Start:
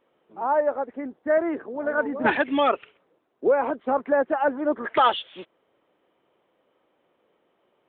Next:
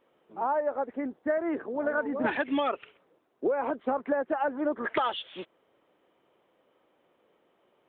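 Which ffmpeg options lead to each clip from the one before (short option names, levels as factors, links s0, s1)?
-af "acompressor=threshold=0.0631:ratio=10"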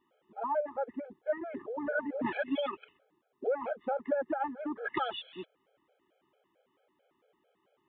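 -af "afftfilt=real='re*gt(sin(2*PI*4.5*pts/sr)*(1-2*mod(floor(b*sr/1024/430),2)),0)':imag='im*gt(sin(2*PI*4.5*pts/sr)*(1-2*mod(floor(b*sr/1024/430),2)),0)':win_size=1024:overlap=0.75,volume=0.794"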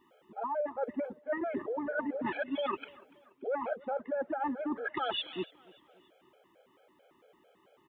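-af "areverse,acompressor=threshold=0.0112:ratio=12,areverse,aecho=1:1:289|578|867:0.0668|0.0327|0.016,volume=2.66"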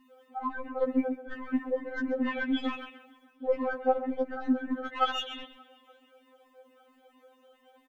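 -af "aeval=exprs='0.0891*(cos(1*acos(clip(val(0)/0.0891,-1,1)))-cos(1*PI/2))+0.0112*(cos(4*acos(clip(val(0)/0.0891,-1,1)))-cos(4*PI/2))+0.00501*(cos(6*acos(clip(val(0)/0.0891,-1,1)))-cos(6*PI/2))':c=same,aecho=1:1:134:0.224,afftfilt=real='re*3.46*eq(mod(b,12),0)':imag='im*3.46*eq(mod(b,12),0)':win_size=2048:overlap=0.75,volume=2.11"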